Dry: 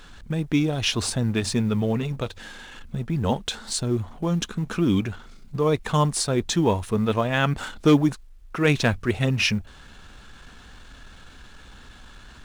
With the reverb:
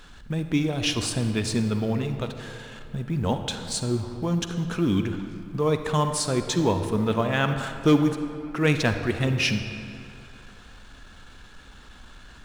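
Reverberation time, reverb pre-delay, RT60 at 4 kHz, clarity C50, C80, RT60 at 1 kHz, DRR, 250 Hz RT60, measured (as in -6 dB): 2.7 s, 40 ms, 1.6 s, 7.5 dB, 8.5 dB, 2.7 s, 7.5 dB, 2.5 s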